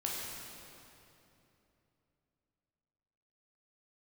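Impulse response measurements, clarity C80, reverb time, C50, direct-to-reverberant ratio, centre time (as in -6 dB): 0.0 dB, 3.0 s, -1.5 dB, -4.0 dB, 0.146 s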